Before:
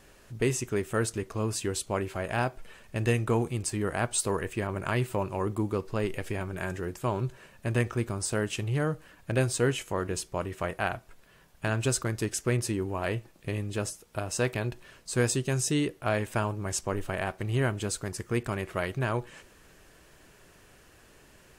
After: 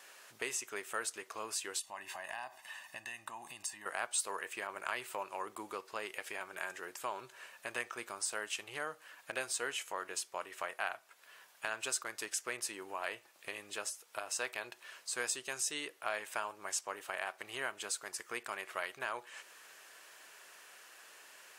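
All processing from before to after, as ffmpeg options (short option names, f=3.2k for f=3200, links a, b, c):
-filter_complex "[0:a]asettb=1/sr,asplit=3[a][b][c];[a]atrim=end=1.794[d];[b]atrim=start=1.79:end=3.86,asetpts=PTS-STARTPTS,afade=t=in:d=0.004:c=qsin,afade=t=out:st=2.066:d=0.004:c=qsin,aecho=1:1:1.1:0.87,atrim=end_sample=91287,acompressor=threshold=-32dB:ratio=10:attack=3.2:release=140:knee=1:detection=peak[e];[c]atrim=start=3.856[f];[d][e]acrossfade=d=0.004:c1=hsin:c2=qsin[g];[g][f]acrossfade=d=0.004:c1=qsin:c2=hsin,highpass=860,acompressor=threshold=-51dB:ratio=1.5,volume=3.5dB"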